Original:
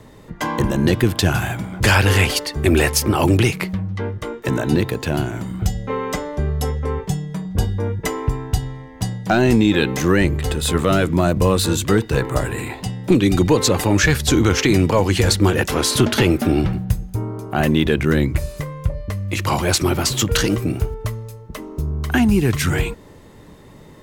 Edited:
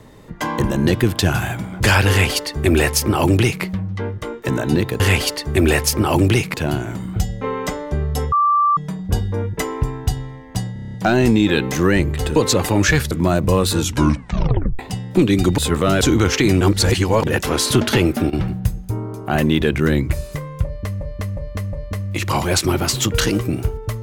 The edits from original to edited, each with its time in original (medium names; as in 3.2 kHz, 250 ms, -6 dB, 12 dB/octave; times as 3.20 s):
2.09–3.63 s: copy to 5.00 s
6.78–7.23 s: bleep 1.17 kHz -12 dBFS
9.19 s: stutter 0.03 s, 8 plays
10.61–11.04 s: swap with 13.51–14.26 s
11.71 s: tape stop 1.01 s
14.86–15.52 s: reverse
16.17–16.96 s: dip -15.5 dB, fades 0.38 s logarithmic
18.90–19.26 s: loop, 4 plays